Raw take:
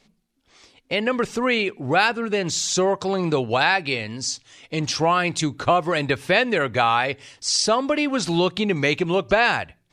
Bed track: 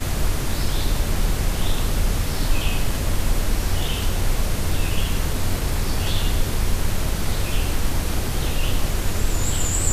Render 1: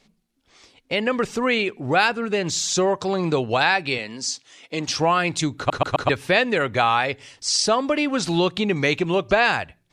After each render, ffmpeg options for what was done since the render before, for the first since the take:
-filter_complex "[0:a]asettb=1/sr,asplit=3[a][b][c];[a]atrim=end=3.984[d];[b]atrim=start=3.98:end=4.88,asetpts=PTS-STARTPTS,afade=t=in:d=0.004:c=qsin,afade=t=out:st=0.896:d=0.004:c=qsin,highpass=220[e];[c]atrim=start=4.876[f];[d][e]acrossfade=d=0.004:c1=hsin:c2=qsin[g];[g][f]acrossfade=d=0.004:c1=qsin:c2=hsin,asplit=5[h][i][j][k][l];[h]atrim=end=5.702[m];[i]atrim=start=5.568:end=5.702[n];[j]atrim=start=5.568:end=5.702[o];[k]atrim=start=5.568:end=5.702[p];[l]atrim=start=6.088[q];[m][n]acrossfade=d=0.004:c1=hsin:c2=hsin[r];[r][o]acrossfade=d=0.004:c1=hsin:c2=hsin[s];[s][p]acrossfade=d=0.004:c1=hsin:c2=hsin[t];[t][q]acrossfade=d=0.004:c1=hsin:c2=hsin"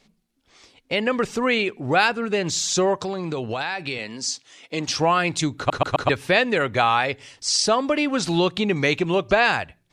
-filter_complex "[0:a]asettb=1/sr,asplit=3[a][b][c];[a]atrim=end=2.984[d];[b]atrim=start=2.98:end=4.12,asetpts=PTS-STARTPTS,afade=t=in:d=0.004:c=qsin,afade=t=out:st=1.136:d=0.004:c=qsin,acompressor=threshold=-23dB:ratio=6:attack=3.2:release=140:knee=1:detection=peak[e];[c]atrim=start=4.116[f];[d][e]acrossfade=d=0.004:c1=hsin:c2=qsin[g];[g][f]acrossfade=d=0.004:c1=qsin:c2=hsin"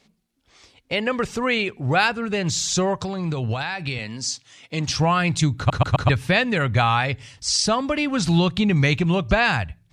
-af "highpass=43,asubboost=boost=8:cutoff=130"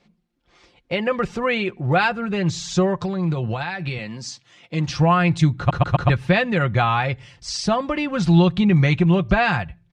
-af "aemphasis=mode=reproduction:type=75fm,aecho=1:1:5.7:0.51"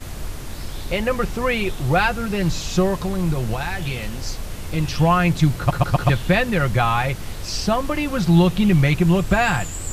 -filter_complex "[1:a]volume=-8.5dB[a];[0:a][a]amix=inputs=2:normalize=0"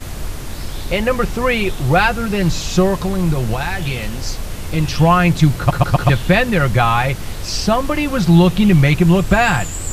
-af "volume=4.5dB,alimiter=limit=-1dB:level=0:latency=1"

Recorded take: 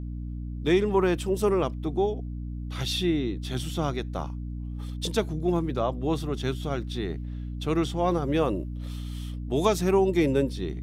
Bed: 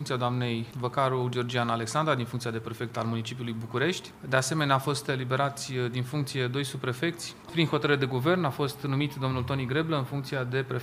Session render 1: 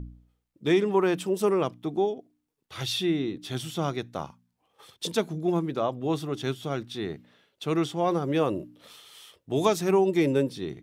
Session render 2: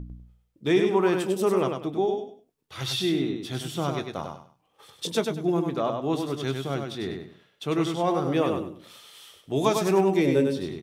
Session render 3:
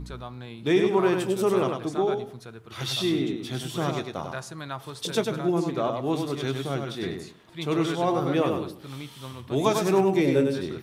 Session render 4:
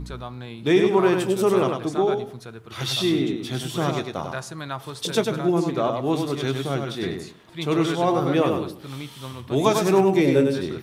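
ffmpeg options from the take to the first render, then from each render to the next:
-af "bandreject=f=60:t=h:w=4,bandreject=f=120:t=h:w=4,bandreject=f=180:t=h:w=4,bandreject=f=240:t=h:w=4,bandreject=f=300:t=h:w=4"
-filter_complex "[0:a]asplit=2[a][b];[b]adelay=22,volume=-13.5dB[c];[a][c]amix=inputs=2:normalize=0,aecho=1:1:99|198|297:0.562|0.146|0.038"
-filter_complex "[1:a]volume=-11dB[a];[0:a][a]amix=inputs=2:normalize=0"
-af "volume=3.5dB"

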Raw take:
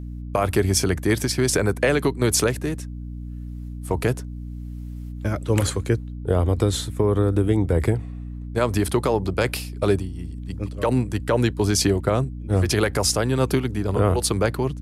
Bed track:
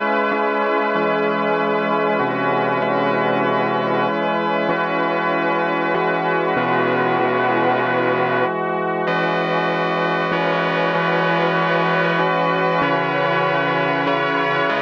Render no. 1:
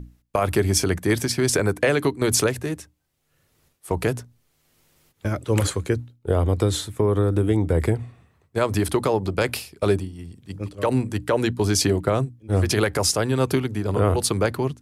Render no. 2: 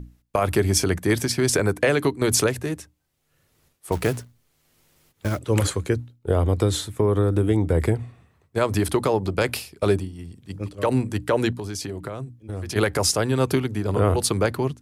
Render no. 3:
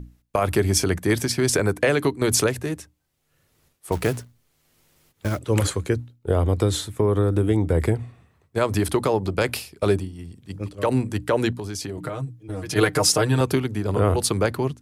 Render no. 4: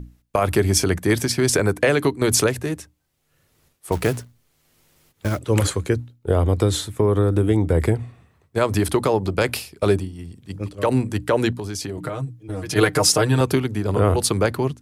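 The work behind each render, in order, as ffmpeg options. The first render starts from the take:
-af "bandreject=f=60:t=h:w=6,bandreject=f=120:t=h:w=6,bandreject=f=180:t=h:w=6,bandreject=f=240:t=h:w=6,bandreject=f=300:t=h:w=6"
-filter_complex "[0:a]asettb=1/sr,asplit=3[a][b][c];[a]atrim=end=3.924[d];[b]atrim=start=3.92:end=5.39,asetpts=PTS-STARTPTS,afade=t=in:d=0.004:c=qsin,afade=t=out:st=1.466:d=0.004:c=qsin,acrusher=bits=4:mode=log:mix=0:aa=0.000001[e];[c]atrim=start=5.386[f];[d][e]acrossfade=d=0.004:c1=hsin:c2=qsin[g];[g][f]acrossfade=d=0.004:c1=qsin:c2=hsin,asettb=1/sr,asplit=3[h][i][j];[h]atrim=end=11.524[k];[i]atrim=start=11.52:end=12.76,asetpts=PTS-STARTPTS,afade=t=in:d=0.004:c=qsin,afade=t=out:st=1.236:d=0.004:c=qsin,acompressor=threshold=-28dB:ratio=6:attack=3.2:release=140:knee=1:detection=peak[l];[j]atrim=start=12.756[m];[k][l]acrossfade=d=0.004:c1=hsin:c2=qsin[n];[n][m]acrossfade=d=0.004:c1=qsin:c2=hsin"
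-filter_complex "[0:a]asettb=1/sr,asplit=3[a][b][c];[a]atrim=end=11.974[d];[b]atrim=start=11.97:end=13.41,asetpts=PTS-STARTPTS,afade=t=in:d=0.004:c=qsin,afade=t=out:st=1.436:d=0.004:c=qsin,aecho=1:1:6.5:0.89,atrim=end_sample=63504[e];[c]atrim=start=13.406[f];[d][e]acrossfade=d=0.004:c1=hsin:c2=qsin[g];[g][f]acrossfade=d=0.004:c1=qsin:c2=hsin"
-af "volume=2dB"

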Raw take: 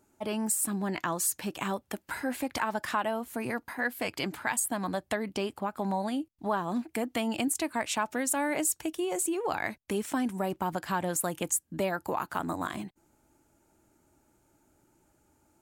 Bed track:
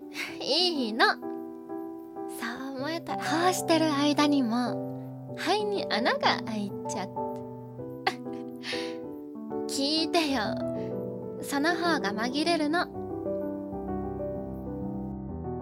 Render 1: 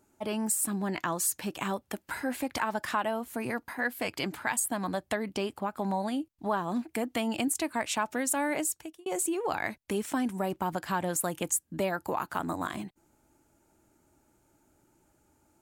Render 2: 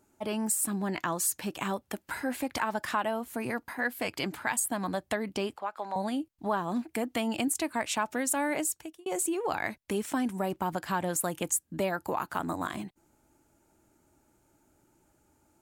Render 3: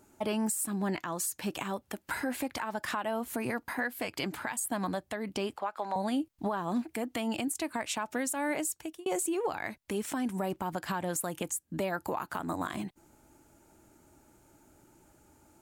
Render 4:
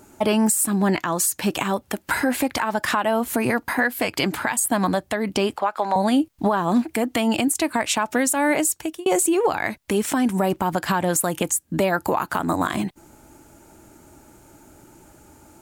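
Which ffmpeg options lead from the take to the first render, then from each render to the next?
-filter_complex "[0:a]asplit=2[a][b];[a]atrim=end=9.06,asetpts=PTS-STARTPTS,afade=t=out:st=8.53:d=0.53[c];[b]atrim=start=9.06,asetpts=PTS-STARTPTS,afade=t=in:d=0.004:c=hsin[d];[c][d]concat=n=2:v=0:a=1"
-filter_complex "[0:a]asettb=1/sr,asplit=3[a][b][c];[a]atrim=end=5.564[d];[b]atrim=start=5.56:end=5.96,asetpts=PTS-STARTPTS,afade=t=in:d=0.004:c=qsin,afade=t=out:st=0.396:d=0.004:c=qsin,acrossover=split=460 6400:gain=0.0794 1 0.224[e][f][g];[e][f][g]amix=inputs=3:normalize=0[h];[c]atrim=start=5.956[i];[d][h]acrossfade=d=0.004:c1=hsin:c2=qsin[j];[j][i]acrossfade=d=0.004:c1=qsin:c2=hsin"
-filter_complex "[0:a]asplit=2[a][b];[b]acompressor=threshold=-38dB:ratio=6,volume=0dB[c];[a][c]amix=inputs=2:normalize=0,alimiter=limit=-22.5dB:level=0:latency=1:release=319"
-af "volume=12dB"

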